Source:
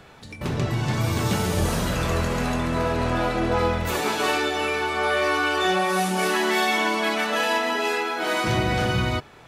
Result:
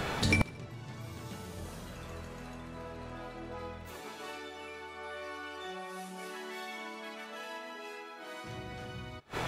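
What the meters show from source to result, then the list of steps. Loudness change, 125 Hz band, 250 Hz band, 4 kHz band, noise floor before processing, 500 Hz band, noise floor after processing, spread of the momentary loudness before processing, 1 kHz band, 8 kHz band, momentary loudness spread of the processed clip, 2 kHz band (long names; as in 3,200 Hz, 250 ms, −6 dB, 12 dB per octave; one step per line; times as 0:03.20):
−17.0 dB, −15.0 dB, −15.5 dB, −16.0 dB, −45 dBFS, −18.5 dB, −47 dBFS, 4 LU, −18.5 dB, −15.5 dB, 6 LU, −16.0 dB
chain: gate with flip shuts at −26 dBFS, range −34 dB
feedback echo with a high-pass in the loop 75 ms, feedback 54%, high-pass 1,100 Hz, level −20 dB
level +13.5 dB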